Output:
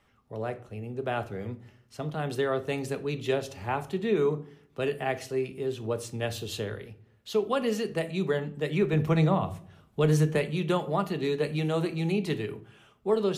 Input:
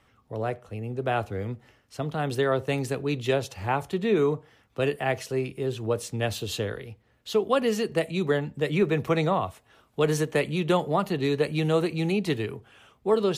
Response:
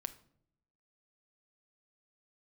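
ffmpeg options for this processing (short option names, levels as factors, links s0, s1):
-filter_complex "[0:a]asettb=1/sr,asplit=3[s0][s1][s2];[s0]atrim=end=8.934[s3];[s1]atrim=start=8.93:end=10.38,asetpts=PTS-STARTPTS,afade=t=in:d=0.004:c=qsin,afade=t=out:st=1.446:d=0.004:c=qsin,lowshelf=f=220:g=9[s4];[s2]atrim=start=10.376[s5];[s3][s4]acrossfade=d=0.004:c1=hsin:c2=qsin[s6];[s6][s5]acrossfade=d=0.004:c1=qsin:c2=hsin[s7];[1:a]atrim=start_sample=2205,asetrate=52920,aresample=44100[s8];[s7][s8]afir=irnorm=-1:irlink=0"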